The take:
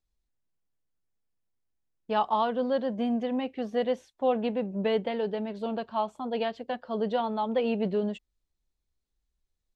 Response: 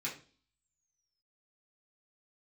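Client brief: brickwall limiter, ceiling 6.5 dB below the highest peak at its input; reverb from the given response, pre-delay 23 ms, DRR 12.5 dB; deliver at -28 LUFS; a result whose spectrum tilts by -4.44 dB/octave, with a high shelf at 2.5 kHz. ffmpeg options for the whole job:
-filter_complex "[0:a]highshelf=f=2500:g=3,alimiter=limit=0.0944:level=0:latency=1,asplit=2[s0][s1];[1:a]atrim=start_sample=2205,adelay=23[s2];[s1][s2]afir=irnorm=-1:irlink=0,volume=0.178[s3];[s0][s3]amix=inputs=2:normalize=0,volume=1.33"

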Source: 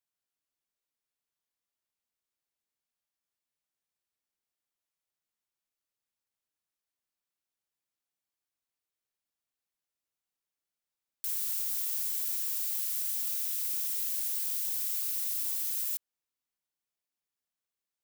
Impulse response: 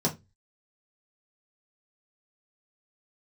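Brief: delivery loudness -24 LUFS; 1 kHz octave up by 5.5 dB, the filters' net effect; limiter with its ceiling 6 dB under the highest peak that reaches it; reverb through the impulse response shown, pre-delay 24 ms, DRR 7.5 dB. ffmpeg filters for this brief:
-filter_complex "[0:a]equalizer=f=1000:t=o:g=7,alimiter=level_in=1.06:limit=0.0631:level=0:latency=1,volume=0.944,asplit=2[s0][s1];[1:a]atrim=start_sample=2205,adelay=24[s2];[s1][s2]afir=irnorm=-1:irlink=0,volume=0.15[s3];[s0][s3]amix=inputs=2:normalize=0,volume=2.37"

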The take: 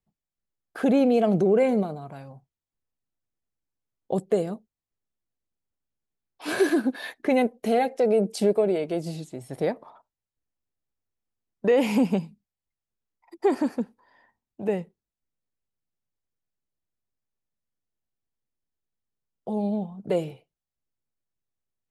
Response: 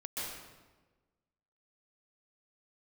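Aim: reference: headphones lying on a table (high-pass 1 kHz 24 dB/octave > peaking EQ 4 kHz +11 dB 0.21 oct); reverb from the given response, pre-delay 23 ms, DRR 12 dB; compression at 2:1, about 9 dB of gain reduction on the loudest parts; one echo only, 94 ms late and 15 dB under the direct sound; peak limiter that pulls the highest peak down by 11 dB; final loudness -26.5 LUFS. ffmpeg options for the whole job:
-filter_complex "[0:a]acompressor=threshold=0.0224:ratio=2,alimiter=level_in=1.78:limit=0.0631:level=0:latency=1,volume=0.562,aecho=1:1:94:0.178,asplit=2[s0][s1];[1:a]atrim=start_sample=2205,adelay=23[s2];[s1][s2]afir=irnorm=-1:irlink=0,volume=0.188[s3];[s0][s3]amix=inputs=2:normalize=0,highpass=f=1000:w=0.5412,highpass=f=1000:w=1.3066,equalizer=f=4000:t=o:w=0.21:g=11,volume=10.6"

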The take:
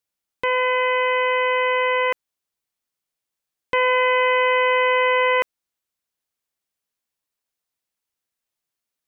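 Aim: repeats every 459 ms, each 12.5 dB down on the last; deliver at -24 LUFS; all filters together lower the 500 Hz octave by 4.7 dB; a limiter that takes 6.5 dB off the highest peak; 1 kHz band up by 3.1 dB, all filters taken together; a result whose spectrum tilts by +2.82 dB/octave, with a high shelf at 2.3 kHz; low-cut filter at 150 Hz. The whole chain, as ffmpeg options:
-af "highpass=150,equalizer=f=500:t=o:g=-5.5,equalizer=f=1000:t=o:g=3.5,highshelf=f=2300:g=4,alimiter=limit=0.2:level=0:latency=1,aecho=1:1:459|918|1377:0.237|0.0569|0.0137,volume=0.891"

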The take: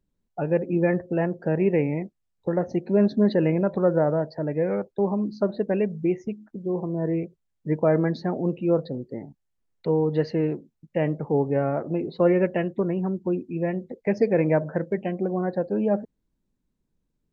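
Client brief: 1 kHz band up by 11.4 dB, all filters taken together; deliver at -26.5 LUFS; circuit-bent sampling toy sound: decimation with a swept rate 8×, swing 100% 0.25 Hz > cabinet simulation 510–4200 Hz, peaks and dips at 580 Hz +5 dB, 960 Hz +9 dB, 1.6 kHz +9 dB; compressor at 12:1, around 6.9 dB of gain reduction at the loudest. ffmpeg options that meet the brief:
-af "equalizer=f=1000:t=o:g=8.5,acompressor=threshold=0.1:ratio=12,acrusher=samples=8:mix=1:aa=0.000001:lfo=1:lforange=8:lforate=0.25,highpass=510,equalizer=f=580:t=q:w=4:g=5,equalizer=f=960:t=q:w=4:g=9,equalizer=f=1600:t=q:w=4:g=9,lowpass=f=4200:w=0.5412,lowpass=f=4200:w=1.3066,volume=1.26"

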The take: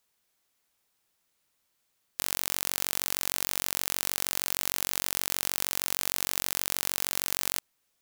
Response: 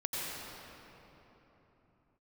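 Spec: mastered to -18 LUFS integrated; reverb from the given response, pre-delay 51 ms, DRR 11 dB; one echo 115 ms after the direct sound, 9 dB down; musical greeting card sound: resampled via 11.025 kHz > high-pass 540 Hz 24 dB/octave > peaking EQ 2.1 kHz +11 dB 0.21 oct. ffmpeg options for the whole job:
-filter_complex "[0:a]aecho=1:1:115:0.355,asplit=2[s0][s1];[1:a]atrim=start_sample=2205,adelay=51[s2];[s1][s2]afir=irnorm=-1:irlink=0,volume=0.158[s3];[s0][s3]amix=inputs=2:normalize=0,aresample=11025,aresample=44100,highpass=f=540:w=0.5412,highpass=f=540:w=1.3066,equalizer=f=2100:t=o:w=0.21:g=11,volume=5.62"

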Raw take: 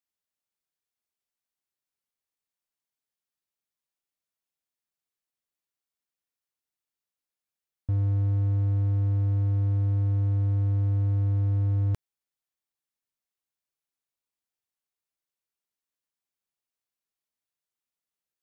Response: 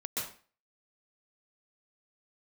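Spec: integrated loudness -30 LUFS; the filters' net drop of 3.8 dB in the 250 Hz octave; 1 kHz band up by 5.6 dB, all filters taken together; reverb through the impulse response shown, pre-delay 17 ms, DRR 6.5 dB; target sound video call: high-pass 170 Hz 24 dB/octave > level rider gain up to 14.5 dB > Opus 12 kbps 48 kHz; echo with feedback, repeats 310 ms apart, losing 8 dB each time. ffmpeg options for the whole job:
-filter_complex "[0:a]equalizer=f=250:t=o:g=-5,equalizer=f=1000:t=o:g=8,aecho=1:1:310|620|930|1240|1550:0.398|0.159|0.0637|0.0255|0.0102,asplit=2[s0][s1];[1:a]atrim=start_sample=2205,adelay=17[s2];[s1][s2]afir=irnorm=-1:irlink=0,volume=0.316[s3];[s0][s3]amix=inputs=2:normalize=0,highpass=f=170:w=0.5412,highpass=f=170:w=1.3066,dynaudnorm=m=5.31,volume=1.12" -ar 48000 -c:a libopus -b:a 12k

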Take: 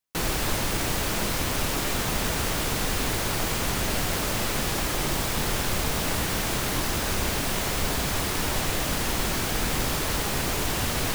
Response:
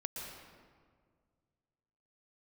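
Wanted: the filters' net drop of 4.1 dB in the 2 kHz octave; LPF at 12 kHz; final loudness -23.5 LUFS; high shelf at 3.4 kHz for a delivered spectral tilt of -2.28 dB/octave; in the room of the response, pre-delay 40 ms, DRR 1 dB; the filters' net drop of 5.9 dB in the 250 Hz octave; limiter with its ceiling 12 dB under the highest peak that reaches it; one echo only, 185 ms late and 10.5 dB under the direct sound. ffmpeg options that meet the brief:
-filter_complex "[0:a]lowpass=12000,equalizer=f=250:t=o:g=-8.5,equalizer=f=2000:t=o:g=-7.5,highshelf=f=3400:g=7,alimiter=limit=0.0631:level=0:latency=1,aecho=1:1:185:0.299,asplit=2[s0][s1];[1:a]atrim=start_sample=2205,adelay=40[s2];[s1][s2]afir=irnorm=-1:irlink=0,volume=0.891[s3];[s0][s3]amix=inputs=2:normalize=0,volume=1.88"

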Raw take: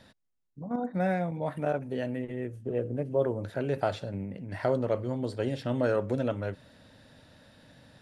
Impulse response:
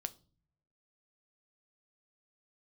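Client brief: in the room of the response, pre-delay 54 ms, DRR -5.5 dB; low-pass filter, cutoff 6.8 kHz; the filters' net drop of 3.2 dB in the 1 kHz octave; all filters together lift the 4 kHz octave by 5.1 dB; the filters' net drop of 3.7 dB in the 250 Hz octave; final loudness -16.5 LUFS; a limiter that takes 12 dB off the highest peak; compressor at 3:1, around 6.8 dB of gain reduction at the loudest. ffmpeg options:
-filter_complex "[0:a]lowpass=6800,equalizer=f=250:t=o:g=-4.5,equalizer=f=1000:t=o:g=-5,equalizer=f=4000:t=o:g=7,acompressor=threshold=0.0224:ratio=3,alimiter=level_in=2.24:limit=0.0631:level=0:latency=1,volume=0.447,asplit=2[s0][s1];[1:a]atrim=start_sample=2205,adelay=54[s2];[s1][s2]afir=irnorm=-1:irlink=0,volume=2.37[s3];[s0][s3]amix=inputs=2:normalize=0,volume=7.08"

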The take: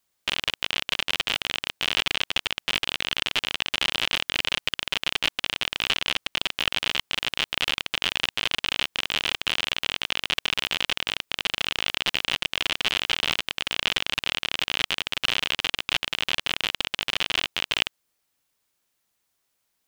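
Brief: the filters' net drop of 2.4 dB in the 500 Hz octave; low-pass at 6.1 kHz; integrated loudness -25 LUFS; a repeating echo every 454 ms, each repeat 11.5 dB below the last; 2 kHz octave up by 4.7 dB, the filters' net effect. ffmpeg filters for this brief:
-af "lowpass=6100,equalizer=f=500:t=o:g=-3.5,equalizer=f=2000:t=o:g=6.5,aecho=1:1:454|908|1362:0.266|0.0718|0.0194,volume=0.708"

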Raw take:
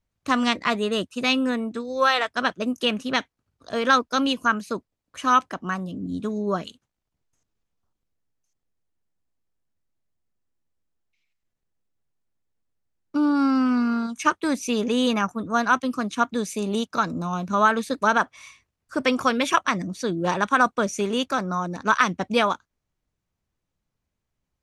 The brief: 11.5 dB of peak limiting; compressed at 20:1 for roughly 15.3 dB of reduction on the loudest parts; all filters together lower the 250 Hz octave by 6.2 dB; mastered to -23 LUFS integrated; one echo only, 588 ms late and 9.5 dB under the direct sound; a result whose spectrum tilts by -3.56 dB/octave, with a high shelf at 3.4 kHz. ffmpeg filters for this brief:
-af "equalizer=f=250:t=o:g=-7,highshelf=f=3400:g=5.5,acompressor=threshold=0.0398:ratio=20,alimiter=level_in=1.33:limit=0.0631:level=0:latency=1,volume=0.75,aecho=1:1:588:0.335,volume=4.73"

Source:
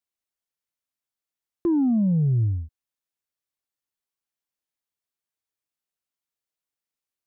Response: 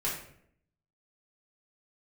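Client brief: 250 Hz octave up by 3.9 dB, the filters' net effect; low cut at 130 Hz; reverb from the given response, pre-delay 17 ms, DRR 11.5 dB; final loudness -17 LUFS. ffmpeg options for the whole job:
-filter_complex "[0:a]highpass=130,equalizer=f=250:t=o:g=5.5,asplit=2[s0][s1];[1:a]atrim=start_sample=2205,adelay=17[s2];[s1][s2]afir=irnorm=-1:irlink=0,volume=0.133[s3];[s0][s3]amix=inputs=2:normalize=0,volume=1.41"

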